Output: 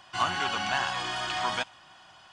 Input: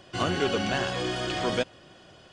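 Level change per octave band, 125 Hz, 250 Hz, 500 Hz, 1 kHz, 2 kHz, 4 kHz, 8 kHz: −10.5, −12.0, −11.0, +3.5, +1.5, +0.5, 0.0 decibels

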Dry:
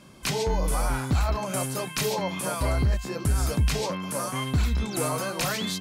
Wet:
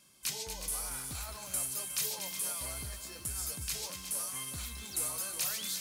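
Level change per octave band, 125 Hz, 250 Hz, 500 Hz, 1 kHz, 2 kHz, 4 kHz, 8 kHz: −21.5, −21.5, −20.0, −17.0, −12.0, −6.5, −0.5 decibels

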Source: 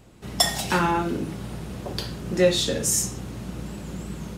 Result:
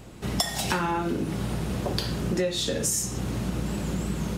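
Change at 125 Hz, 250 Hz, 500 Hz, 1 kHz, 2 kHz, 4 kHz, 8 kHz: +1.5, 0.0, −4.5, −3.5, −3.5, −3.5, −3.5 decibels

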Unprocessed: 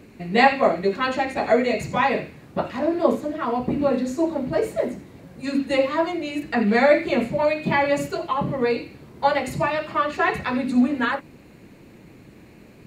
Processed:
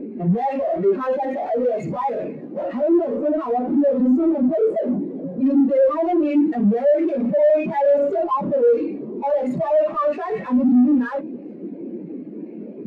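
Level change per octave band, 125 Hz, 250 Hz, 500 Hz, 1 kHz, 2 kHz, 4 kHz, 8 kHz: +2.0 dB, +5.0 dB, +4.0 dB, −2.0 dB, −13.0 dB, below −15 dB, below −15 dB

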